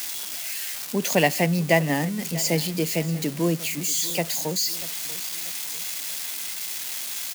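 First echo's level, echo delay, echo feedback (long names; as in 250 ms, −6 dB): −18.0 dB, 639 ms, 41%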